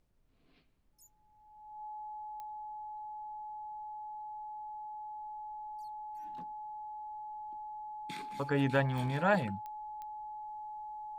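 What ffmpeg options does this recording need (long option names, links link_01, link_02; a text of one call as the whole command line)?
ffmpeg -i in.wav -af "adeclick=threshold=4,bandreject=frequency=850:width=30,agate=range=-21dB:threshold=-58dB" out.wav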